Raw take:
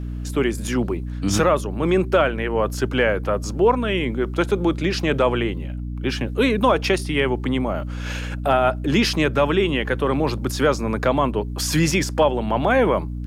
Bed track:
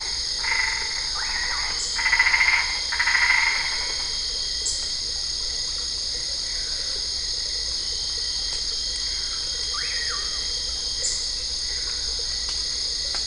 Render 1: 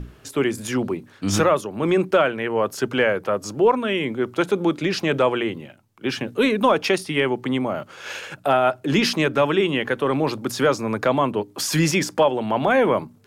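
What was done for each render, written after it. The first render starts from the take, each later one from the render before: hum notches 60/120/180/240/300 Hz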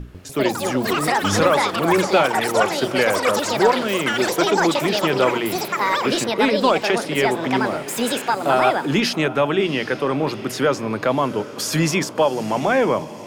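echo that smears into a reverb 752 ms, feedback 45%, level -14.5 dB; ever faster or slower copies 147 ms, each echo +7 st, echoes 3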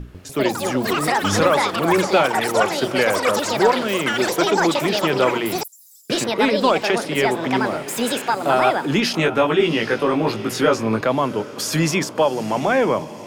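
5.63–6.10 s: inverse Chebyshev high-pass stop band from 2.7 kHz, stop band 60 dB; 9.12–11.01 s: doubling 18 ms -2 dB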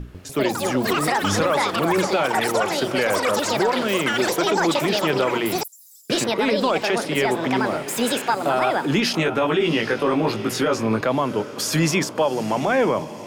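peak limiter -11 dBFS, peak gain reduction 7.5 dB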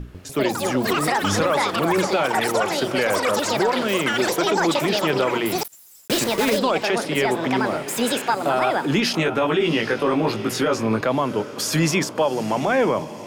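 5.59–6.61 s: block-companded coder 3-bit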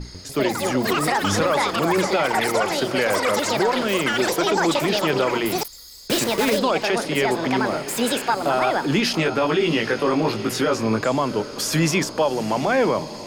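add bed track -16.5 dB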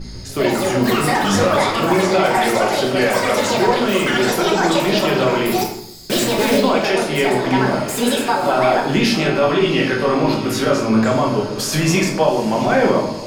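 simulated room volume 160 m³, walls mixed, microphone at 1.1 m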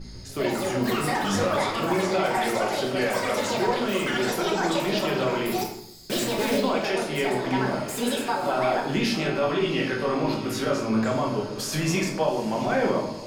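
trim -8.5 dB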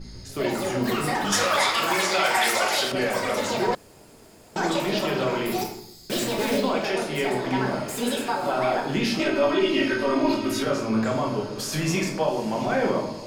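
1.32–2.92 s: tilt shelf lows -9.5 dB, about 650 Hz; 3.75–4.56 s: room tone; 9.19–10.63 s: comb 3.2 ms, depth 85%

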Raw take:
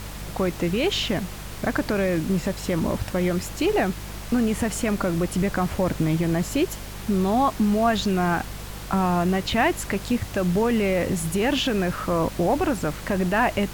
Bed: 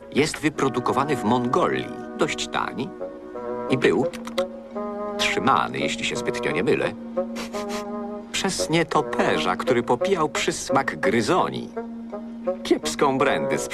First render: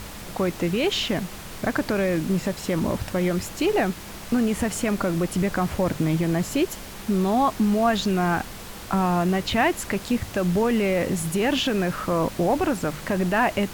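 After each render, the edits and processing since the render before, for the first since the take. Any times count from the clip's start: de-hum 50 Hz, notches 3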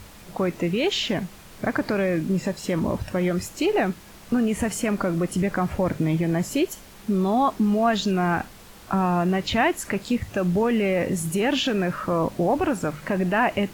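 noise print and reduce 8 dB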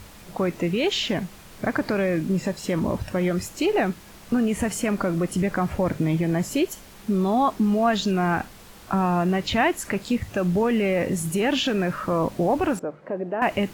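12.79–13.42 s: band-pass filter 490 Hz, Q 1.5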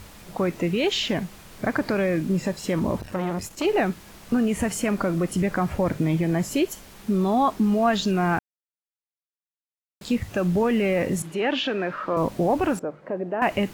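3.01–3.65 s: transformer saturation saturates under 730 Hz; 8.39–10.01 s: mute; 11.22–12.17 s: three-band isolator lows -15 dB, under 250 Hz, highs -20 dB, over 4.4 kHz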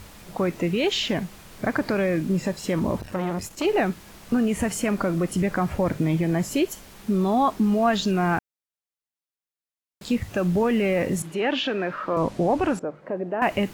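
12.17–12.95 s: low-pass 8.9 kHz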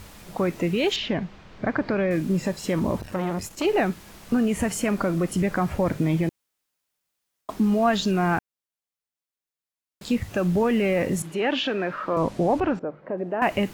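0.96–2.11 s: distance through air 190 m; 6.29–7.49 s: room tone; 12.60–13.18 s: distance through air 210 m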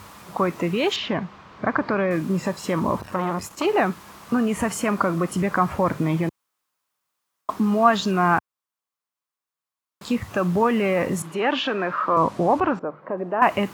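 high-pass 84 Hz; peaking EQ 1.1 kHz +11 dB 0.76 oct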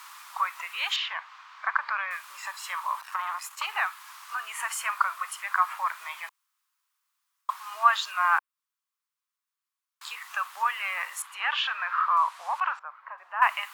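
steep high-pass 990 Hz 36 dB/octave; dynamic bell 5.8 kHz, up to -5 dB, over -50 dBFS, Q 1.6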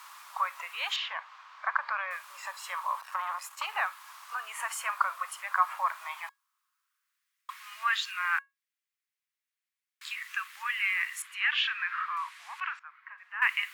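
feedback comb 550 Hz, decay 0.2 s, harmonics all, mix 40%; high-pass sweep 510 Hz -> 2 kHz, 5.64–7.36 s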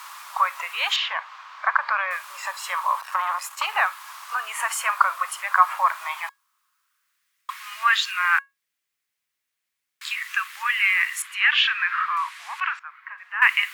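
trim +9 dB; peak limiter -3 dBFS, peak gain reduction 1.5 dB

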